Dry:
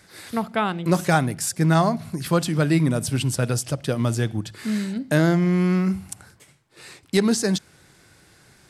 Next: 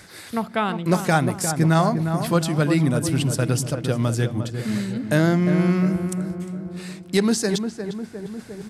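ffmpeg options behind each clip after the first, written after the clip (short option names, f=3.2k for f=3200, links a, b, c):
-filter_complex "[0:a]asplit=2[a][b];[b]adelay=353,lowpass=f=1.4k:p=1,volume=-7dB,asplit=2[c][d];[d]adelay=353,lowpass=f=1.4k:p=1,volume=0.54,asplit=2[e][f];[f]adelay=353,lowpass=f=1.4k:p=1,volume=0.54,asplit=2[g][h];[h]adelay=353,lowpass=f=1.4k:p=1,volume=0.54,asplit=2[i][j];[j]adelay=353,lowpass=f=1.4k:p=1,volume=0.54,asplit=2[k][l];[l]adelay=353,lowpass=f=1.4k:p=1,volume=0.54,asplit=2[m][n];[n]adelay=353,lowpass=f=1.4k:p=1,volume=0.54[o];[a][c][e][g][i][k][m][o]amix=inputs=8:normalize=0,areverse,acompressor=mode=upward:threshold=-27dB:ratio=2.5,areverse"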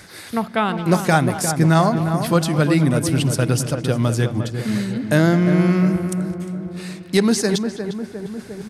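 -filter_complex "[0:a]bandreject=f=7.6k:w=16,asplit=2[a][b];[b]adelay=210,highpass=300,lowpass=3.4k,asoftclip=type=hard:threshold=-14dB,volume=-13dB[c];[a][c]amix=inputs=2:normalize=0,volume=3dB"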